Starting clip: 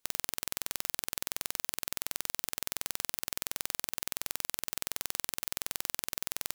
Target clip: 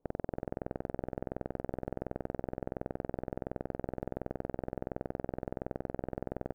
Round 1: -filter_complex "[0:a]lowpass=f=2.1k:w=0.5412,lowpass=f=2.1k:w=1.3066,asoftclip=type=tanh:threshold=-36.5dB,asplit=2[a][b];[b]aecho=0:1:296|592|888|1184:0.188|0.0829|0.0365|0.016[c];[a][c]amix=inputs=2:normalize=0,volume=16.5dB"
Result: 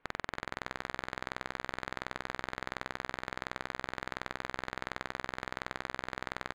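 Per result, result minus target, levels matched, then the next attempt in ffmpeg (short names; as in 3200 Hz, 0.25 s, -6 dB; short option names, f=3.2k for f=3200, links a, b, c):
2000 Hz band +16.5 dB; echo-to-direct +9 dB
-filter_complex "[0:a]lowpass=f=680:w=0.5412,lowpass=f=680:w=1.3066,asoftclip=type=tanh:threshold=-36.5dB,asplit=2[a][b];[b]aecho=0:1:296|592|888|1184:0.188|0.0829|0.0365|0.016[c];[a][c]amix=inputs=2:normalize=0,volume=16.5dB"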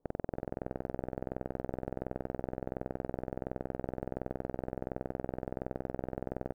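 echo-to-direct +9 dB
-filter_complex "[0:a]lowpass=f=680:w=0.5412,lowpass=f=680:w=1.3066,asoftclip=type=tanh:threshold=-36.5dB,asplit=2[a][b];[b]aecho=0:1:296|592|888:0.0668|0.0294|0.0129[c];[a][c]amix=inputs=2:normalize=0,volume=16.5dB"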